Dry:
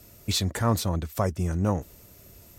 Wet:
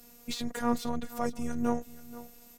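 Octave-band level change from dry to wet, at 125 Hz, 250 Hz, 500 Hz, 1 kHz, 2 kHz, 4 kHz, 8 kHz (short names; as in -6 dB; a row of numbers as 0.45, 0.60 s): -18.0, -2.0, -4.5, -3.0, -4.0, -10.0, -10.0 dB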